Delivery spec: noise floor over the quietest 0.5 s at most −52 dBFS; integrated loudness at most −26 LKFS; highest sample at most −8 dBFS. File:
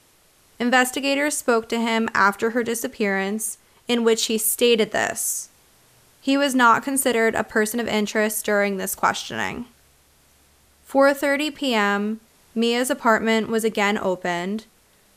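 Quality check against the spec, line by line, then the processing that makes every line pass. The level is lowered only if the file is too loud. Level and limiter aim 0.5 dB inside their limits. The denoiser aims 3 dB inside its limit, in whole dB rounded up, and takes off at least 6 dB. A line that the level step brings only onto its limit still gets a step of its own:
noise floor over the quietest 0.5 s −57 dBFS: in spec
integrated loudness −21.0 LKFS: out of spec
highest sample −5.0 dBFS: out of spec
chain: level −5.5 dB

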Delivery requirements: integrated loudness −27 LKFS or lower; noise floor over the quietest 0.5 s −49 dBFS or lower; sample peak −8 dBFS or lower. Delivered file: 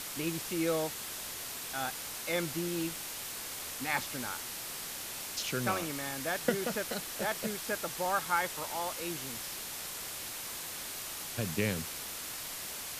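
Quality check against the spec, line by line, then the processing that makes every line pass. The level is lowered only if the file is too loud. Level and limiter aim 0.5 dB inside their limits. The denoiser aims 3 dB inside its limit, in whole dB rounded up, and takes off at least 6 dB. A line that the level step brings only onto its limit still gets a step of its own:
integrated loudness −35.0 LKFS: in spec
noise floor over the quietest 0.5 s −41 dBFS: out of spec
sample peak −13.0 dBFS: in spec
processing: broadband denoise 11 dB, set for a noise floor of −41 dBFS

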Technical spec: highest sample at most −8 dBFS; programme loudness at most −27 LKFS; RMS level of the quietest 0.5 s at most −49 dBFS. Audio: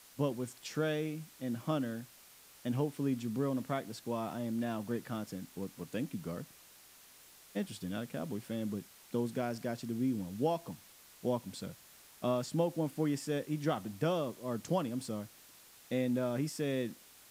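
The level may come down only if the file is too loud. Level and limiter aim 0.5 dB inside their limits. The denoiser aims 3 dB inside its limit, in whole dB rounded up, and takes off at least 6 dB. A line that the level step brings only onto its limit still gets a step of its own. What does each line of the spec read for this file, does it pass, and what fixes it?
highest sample −18.5 dBFS: in spec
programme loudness −37.0 LKFS: in spec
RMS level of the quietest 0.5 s −59 dBFS: in spec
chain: no processing needed

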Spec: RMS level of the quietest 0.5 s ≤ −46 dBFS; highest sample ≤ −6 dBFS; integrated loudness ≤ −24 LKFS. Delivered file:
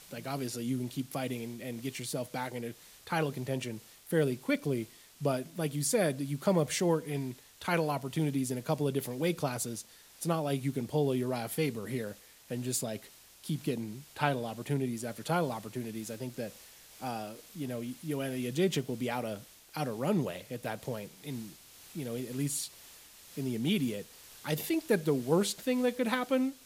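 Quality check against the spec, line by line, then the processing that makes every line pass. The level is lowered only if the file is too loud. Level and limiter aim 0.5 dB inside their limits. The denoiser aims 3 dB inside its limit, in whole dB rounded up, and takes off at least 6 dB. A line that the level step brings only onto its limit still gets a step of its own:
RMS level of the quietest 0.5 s −54 dBFS: in spec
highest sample −12.0 dBFS: in spec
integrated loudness −33.5 LKFS: in spec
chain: no processing needed

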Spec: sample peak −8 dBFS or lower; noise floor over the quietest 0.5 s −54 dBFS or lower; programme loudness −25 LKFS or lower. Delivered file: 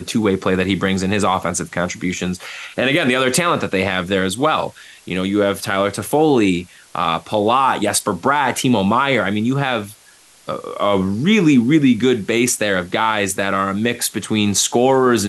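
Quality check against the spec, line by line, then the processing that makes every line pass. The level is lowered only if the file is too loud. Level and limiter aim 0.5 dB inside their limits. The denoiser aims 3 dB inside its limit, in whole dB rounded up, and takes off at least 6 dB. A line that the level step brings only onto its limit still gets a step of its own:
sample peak −4.5 dBFS: out of spec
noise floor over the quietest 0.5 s −48 dBFS: out of spec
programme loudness −17.5 LKFS: out of spec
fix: level −8 dB

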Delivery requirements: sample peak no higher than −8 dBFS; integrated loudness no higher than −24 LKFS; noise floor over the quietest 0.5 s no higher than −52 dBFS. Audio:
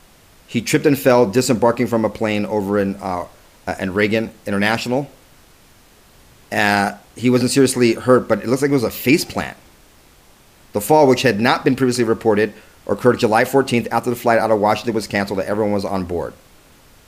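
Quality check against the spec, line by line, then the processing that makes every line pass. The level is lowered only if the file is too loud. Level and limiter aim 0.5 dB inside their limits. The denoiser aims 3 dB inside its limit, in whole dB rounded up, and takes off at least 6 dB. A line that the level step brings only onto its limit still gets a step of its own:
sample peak −2.0 dBFS: out of spec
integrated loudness −17.5 LKFS: out of spec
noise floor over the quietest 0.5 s −49 dBFS: out of spec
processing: level −7 dB

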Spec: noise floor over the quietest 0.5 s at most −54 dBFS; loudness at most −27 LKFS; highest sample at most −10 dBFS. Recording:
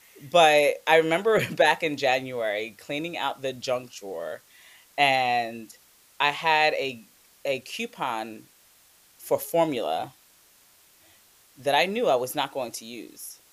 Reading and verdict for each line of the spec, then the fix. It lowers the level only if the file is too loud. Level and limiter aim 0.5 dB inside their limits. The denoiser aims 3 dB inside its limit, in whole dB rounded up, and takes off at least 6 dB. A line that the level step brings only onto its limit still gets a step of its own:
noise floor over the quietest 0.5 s −58 dBFS: in spec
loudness −24.5 LKFS: out of spec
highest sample −6.0 dBFS: out of spec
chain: level −3 dB
brickwall limiter −10.5 dBFS

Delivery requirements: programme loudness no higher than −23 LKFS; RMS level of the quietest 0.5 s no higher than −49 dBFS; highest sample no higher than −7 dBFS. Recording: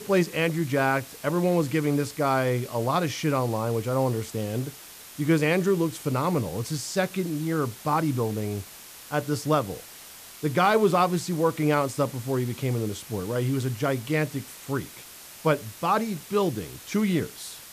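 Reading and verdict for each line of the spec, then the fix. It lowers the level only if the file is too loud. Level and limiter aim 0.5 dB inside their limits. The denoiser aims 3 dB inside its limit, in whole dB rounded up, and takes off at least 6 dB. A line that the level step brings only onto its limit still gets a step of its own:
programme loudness −26.5 LKFS: in spec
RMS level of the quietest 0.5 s −45 dBFS: out of spec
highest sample −10.0 dBFS: in spec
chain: broadband denoise 7 dB, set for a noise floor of −45 dBFS

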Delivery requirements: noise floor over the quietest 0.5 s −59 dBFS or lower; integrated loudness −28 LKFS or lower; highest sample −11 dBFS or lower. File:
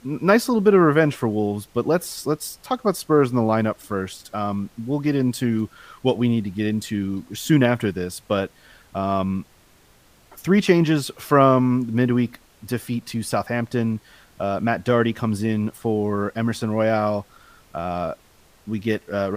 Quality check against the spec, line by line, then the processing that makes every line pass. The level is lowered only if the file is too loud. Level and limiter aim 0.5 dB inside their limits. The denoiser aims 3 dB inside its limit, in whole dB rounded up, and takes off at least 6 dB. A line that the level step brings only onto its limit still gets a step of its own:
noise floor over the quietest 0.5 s −54 dBFS: out of spec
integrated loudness −22.0 LKFS: out of spec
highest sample −3.0 dBFS: out of spec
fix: level −6.5 dB
brickwall limiter −11.5 dBFS

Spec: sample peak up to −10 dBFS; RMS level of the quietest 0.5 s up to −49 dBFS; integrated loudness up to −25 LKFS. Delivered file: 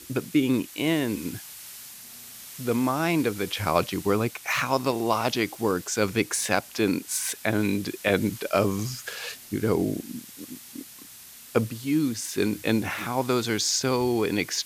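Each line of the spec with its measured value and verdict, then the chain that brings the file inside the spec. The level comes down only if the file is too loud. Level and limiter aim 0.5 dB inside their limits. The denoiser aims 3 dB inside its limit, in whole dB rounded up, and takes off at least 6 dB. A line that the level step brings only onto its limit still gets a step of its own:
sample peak −6.5 dBFS: out of spec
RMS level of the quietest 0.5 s −46 dBFS: out of spec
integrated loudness −26.0 LKFS: in spec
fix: broadband denoise 6 dB, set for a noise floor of −46 dBFS
brickwall limiter −10.5 dBFS

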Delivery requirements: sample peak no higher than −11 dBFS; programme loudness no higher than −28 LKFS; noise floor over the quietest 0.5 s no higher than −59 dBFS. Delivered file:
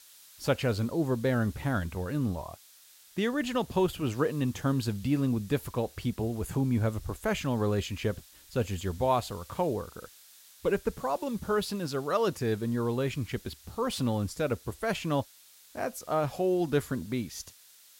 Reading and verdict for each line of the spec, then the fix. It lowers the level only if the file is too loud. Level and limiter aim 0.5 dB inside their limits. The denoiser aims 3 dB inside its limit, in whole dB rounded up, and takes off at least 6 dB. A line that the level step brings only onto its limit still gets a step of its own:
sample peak −13.5 dBFS: in spec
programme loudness −31.0 LKFS: in spec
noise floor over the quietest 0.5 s −57 dBFS: out of spec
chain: broadband denoise 6 dB, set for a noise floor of −57 dBFS

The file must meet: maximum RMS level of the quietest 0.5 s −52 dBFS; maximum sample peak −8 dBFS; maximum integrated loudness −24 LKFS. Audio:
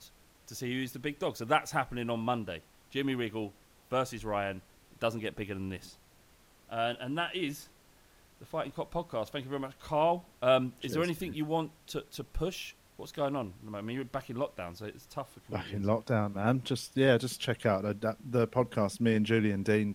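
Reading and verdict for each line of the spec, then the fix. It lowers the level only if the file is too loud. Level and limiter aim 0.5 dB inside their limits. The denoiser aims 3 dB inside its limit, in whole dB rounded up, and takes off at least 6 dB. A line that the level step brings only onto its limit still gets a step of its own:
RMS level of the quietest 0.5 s −62 dBFS: in spec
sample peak −12.5 dBFS: in spec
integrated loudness −33.0 LKFS: in spec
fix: no processing needed

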